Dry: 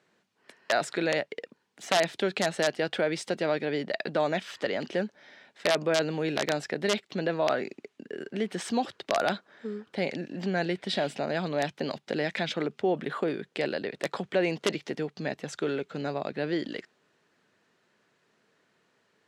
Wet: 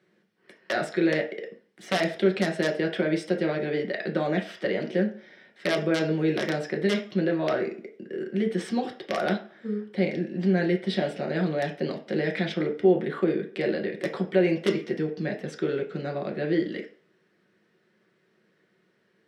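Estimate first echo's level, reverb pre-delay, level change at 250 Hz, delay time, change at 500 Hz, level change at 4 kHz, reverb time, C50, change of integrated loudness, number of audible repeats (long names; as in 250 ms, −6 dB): no echo audible, 4 ms, +6.5 dB, no echo audible, +2.5 dB, −2.5 dB, 0.45 s, 11.0 dB, +3.0 dB, no echo audible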